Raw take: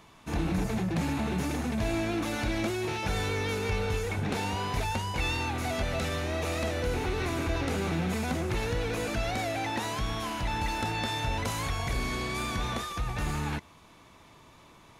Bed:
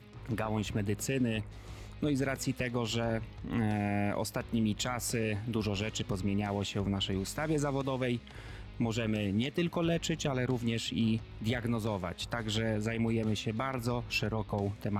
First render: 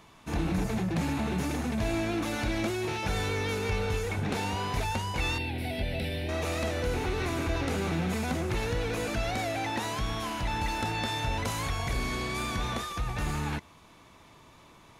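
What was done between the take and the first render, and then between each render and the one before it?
5.38–6.29 s: static phaser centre 2.9 kHz, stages 4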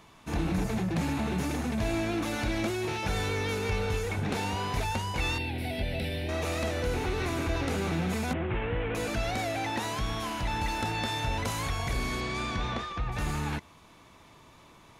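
8.33–8.95 s: CVSD coder 16 kbps; 12.20–13.11 s: low-pass 7.8 kHz -> 3 kHz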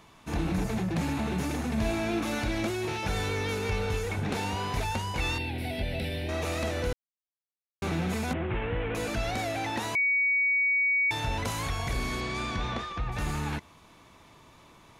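1.67–2.39 s: flutter echo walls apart 7 m, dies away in 0.29 s; 6.93–7.82 s: mute; 9.95–11.11 s: bleep 2.25 kHz -22 dBFS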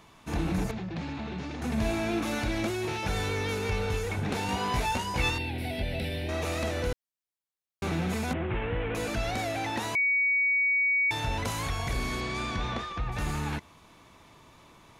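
0.71–1.62 s: four-pole ladder low-pass 5.7 kHz, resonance 25%; 4.47–5.30 s: doubling 16 ms -2 dB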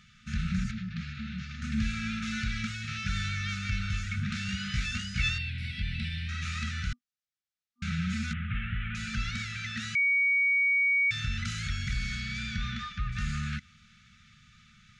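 low-pass 6.9 kHz 24 dB/octave; FFT band-reject 240–1200 Hz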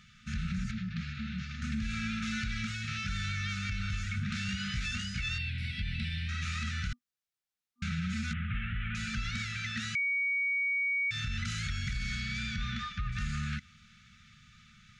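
peak limiter -24 dBFS, peak gain reduction 8.5 dB; compression, threshold -29 dBFS, peak gain reduction 3.5 dB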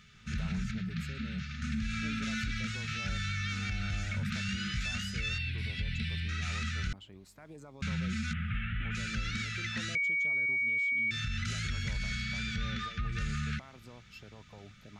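add bed -19 dB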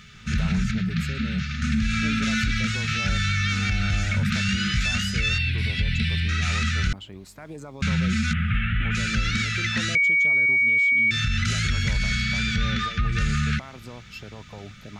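trim +11 dB

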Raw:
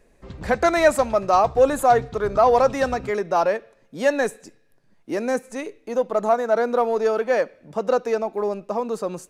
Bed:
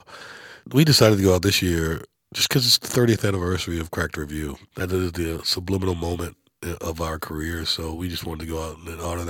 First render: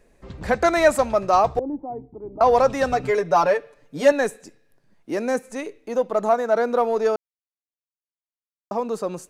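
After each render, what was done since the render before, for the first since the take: 1.59–2.41 s: cascade formant filter u; 2.91–4.12 s: comb 6.8 ms, depth 89%; 7.16–8.71 s: mute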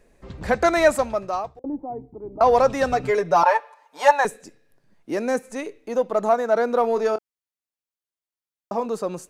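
0.83–1.64 s: fade out; 3.43–4.25 s: resonant high-pass 900 Hz, resonance Q 8.7; 6.81–8.86 s: doubling 26 ms -11 dB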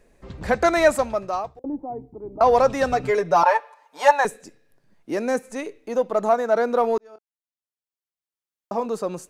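6.98–8.78 s: fade in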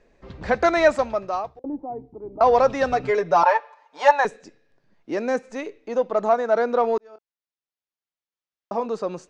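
low-pass 6.2 kHz 24 dB/octave; tone controls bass -3 dB, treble -2 dB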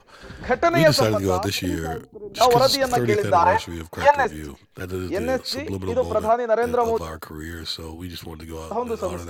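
add bed -5.5 dB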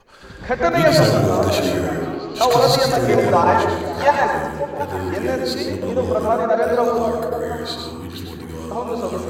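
repeats whose band climbs or falls 181 ms, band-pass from 190 Hz, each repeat 0.7 oct, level -1 dB; plate-style reverb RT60 0.73 s, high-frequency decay 0.55×, pre-delay 85 ms, DRR 2 dB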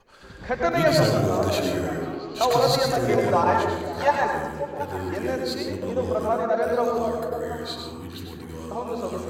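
trim -5.5 dB

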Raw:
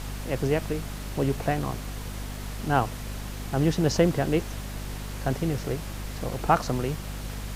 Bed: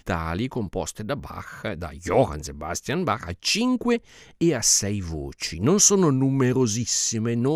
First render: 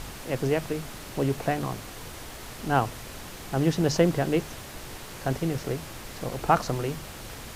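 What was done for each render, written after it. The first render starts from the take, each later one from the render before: hum notches 50/100/150/200/250 Hz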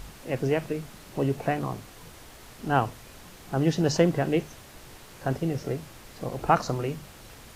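noise print and reduce 7 dB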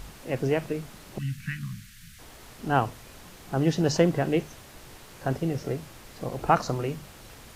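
1.18–2.19 s: elliptic band-stop 200–1600 Hz, stop band 50 dB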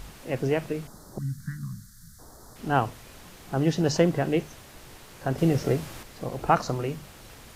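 0.87–2.56 s: Butterworth band-stop 2.6 kHz, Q 0.77; 5.38–6.03 s: gain +6 dB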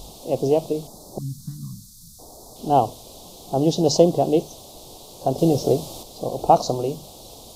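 FFT filter 130 Hz 0 dB, 730 Hz +10 dB, 1.1 kHz -2 dB, 1.7 kHz -28 dB, 3.6 kHz +9 dB, 7.7 kHz +7 dB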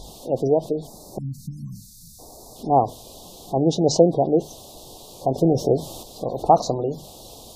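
spectral gate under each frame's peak -30 dB strong; dynamic bell 4.9 kHz, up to -3 dB, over -44 dBFS, Q 3.1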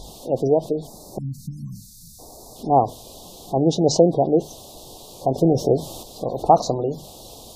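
trim +1 dB; peak limiter -3 dBFS, peak gain reduction 1.5 dB

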